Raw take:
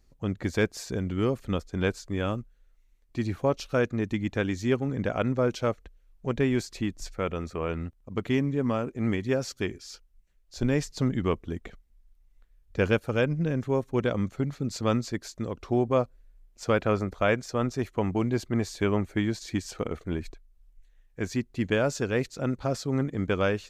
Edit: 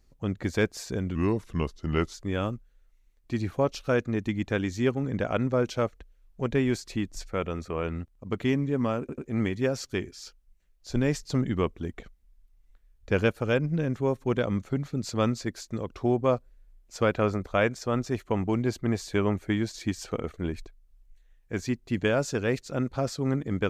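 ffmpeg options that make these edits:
-filter_complex "[0:a]asplit=5[a][b][c][d][e];[a]atrim=end=1.154[f];[b]atrim=start=1.15:end=1.99,asetpts=PTS-STARTPTS,asetrate=37485,aresample=44100,atrim=end_sample=43581,asetpts=PTS-STARTPTS[g];[c]atrim=start=1.986:end=8.942[h];[d]atrim=start=8.848:end=8.942[i];[e]atrim=start=8.848[j];[f][g]acrossfade=d=0.004:c1=hsin:c2=hsin[k];[k][h]acrossfade=d=0.004:c1=hsin:c2=hsin[l];[l][i]acrossfade=d=0.004:c1=hsin:c2=hsin[m];[m][j]acrossfade=d=0.004:c1=hsin:c2=hsin"

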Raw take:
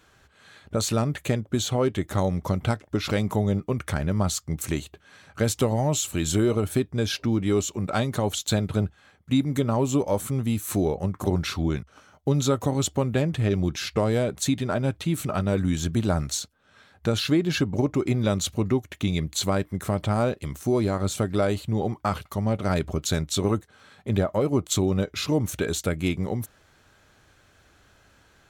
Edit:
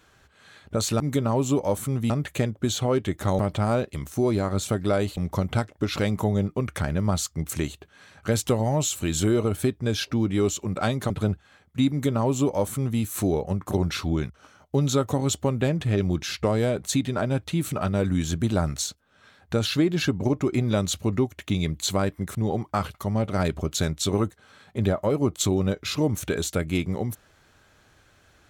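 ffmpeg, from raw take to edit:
-filter_complex "[0:a]asplit=7[a][b][c][d][e][f][g];[a]atrim=end=1.002[h];[b]atrim=start=9.428:end=10.532[i];[c]atrim=start=0.998:end=2.292[j];[d]atrim=start=19.878:end=21.662[k];[e]atrim=start=2.288:end=8.222[l];[f]atrim=start=8.628:end=19.882[m];[g]atrim=start=21.658[n];[h][i]acrossfade=d=0.004:c1=hsin:c2=hsin[o];[o][j]acrossfade=d=0.004:c1=hsin:c2=hsin[p];[p][k]acrossfade=d=0.004:c1=hsin:c2=hsin[q];[q][l]acrossfade=d=0.004:c1=hsin:c2=hsin[r];[r][m]acrossfade=d=0.004:c1=hsin:c2=hsin[s];[s][n]acrossfade=d=0.004:c1=hsin:c2=hsin"

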